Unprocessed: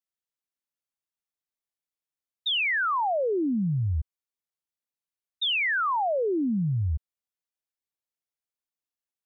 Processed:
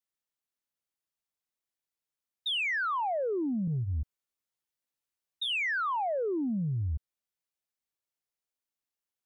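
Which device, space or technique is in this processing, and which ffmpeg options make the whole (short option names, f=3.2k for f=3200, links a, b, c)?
soft clipper into limiter: -filter_complex "[0:a]asettb=1/sr,asplit=3[a][b][c];[a]atrim=end=3.664[d];[b]atrim=start=3.66:end=5.5,asetpts=PTS-STARTPTS,afade=t=in:d=0.004:c=qsin,afade=t=out:st=1.836:d=0.004:c=qsin,asplit=2[e][f];[f]adelay=14,volume=-2.5dB[g];[e][g]amix=inputs=2:normalize=0,atrim=end_sample=81144[h];[c]atrim=start=5.496[i];[d][h]acrossfade=d=0.004:c1=hsin:c2=qsin[j];[j][i]acrossfade=d=0.004:c1=qsin:c2=hsin,asoftclip=type=tanh:threshold=-18.5dB,alimiter=level_in=3.5dB:limit=-24dB:level=0:latency=1:release=16,volume=-3.5dB"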